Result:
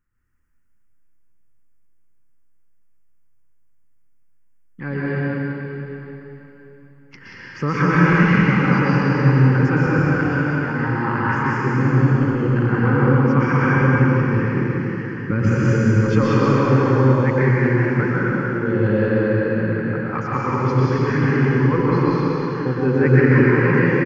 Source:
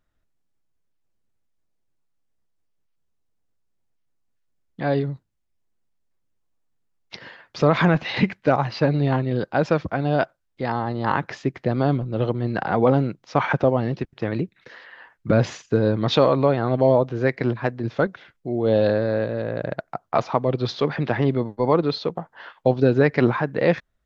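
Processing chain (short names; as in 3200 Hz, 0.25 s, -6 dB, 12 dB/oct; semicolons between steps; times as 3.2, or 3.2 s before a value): fixed phaser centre 1600 Hz, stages 4; on a send: echo 0.182 s -4.5 dB; on the sum: plate-style reverb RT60 3.6 s, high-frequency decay 0.95×, pre-delay 0.105 s, DRR -7.5 dB; gain -1 dB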